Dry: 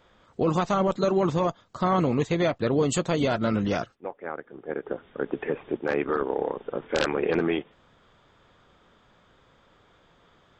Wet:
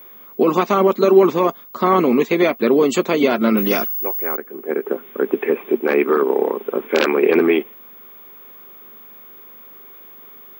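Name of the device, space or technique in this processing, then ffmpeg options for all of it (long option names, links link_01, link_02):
old television with a line whistle: -filter_complex "[0:a]highpass=frequency=210:width=0.5412,highpass=frequency=210:width=1.3066,equalizer=frequency=230:width_type=q:width=4:gain=8,equalizer=frequency=390:width_type=q:width=4:gain=9,equalizer=frequency=1100:width_type=q:width=4:gain=5,equalizer=frequency=2300:width_type=q:width=4:gain=9,lowpass=frequency=7000:width=0.5412,lowpass=frequency=7000:width=1.3066,aeval=exprs='val(0)+0.00631*sin(2*PI*15625*n/s)':channel_layout=same,asettb=1/sr,asplit=3[link_01][link_02][link_03];[link_01]atrim=end=3.574[link_04];[link_02]atrim=start=3.57:end=4.37,asetpts=PTS-STARTPTS,afade=type=in:duration=0.004:curve=qsin,afade=type=out:start_time=0.796:duration=0.004:curve=qsin,aemphasis=mode=production:type=50fm[link_05];[link_03]atrim=start=4.366[link_06];[link_04][link_05]acrossfade=duration=0.004:curve1=hsin:curve2=qsin[link_07];[link_07][link_06]acrossfade=duration=0.004:curve1=qsin:curve2=hsin,volume=5dB"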